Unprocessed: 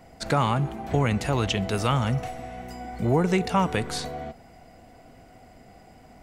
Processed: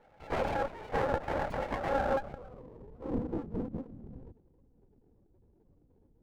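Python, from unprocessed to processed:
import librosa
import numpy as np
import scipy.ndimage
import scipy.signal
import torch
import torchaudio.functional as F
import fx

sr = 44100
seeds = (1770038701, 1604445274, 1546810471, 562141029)

y = fx.highpass(x, sr, hz=67.0, slope=6)
y = fx.peak_eq(y, sr, hz=100.0, db=4.5, octaves=2.2)
y = y * np.sin(2.0 * np.pi * 680.0 * np.arange(len(y)) / sr)
y = fx.filter_sweep_lowpass(y, sr, from_hz=2500.0, to_hz=280.0, start_s=1.44, end_s=2.97, q=1.3)
y = fx.spec_topn(y, sr, count=16)
y = fx.echo_feedback(y, sr, ms=200, feedback_pct=15, wet_db=-24.0)
y = fx.lpc_vocoder(y, sr, seeds[0], excitation='whisper', order=10)
y = fx.running_max(y, sr, window=17)
y = y * 10.0 ** (-5.5 / 20.0)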